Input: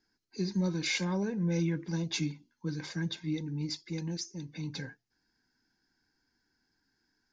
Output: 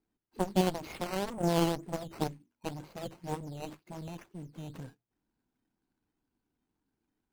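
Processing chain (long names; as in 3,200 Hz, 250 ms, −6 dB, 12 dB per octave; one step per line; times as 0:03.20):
running median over 25 samples
harmonic generator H 3 −7 dB, 6 −30 dB, 8 −27 dB, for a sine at −22 dBFS
sample-and-hold swept by an LFO 9×, swing 100% 2 Hz
highs frequency-modulated by the lows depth 0.37 ms
level +8 dB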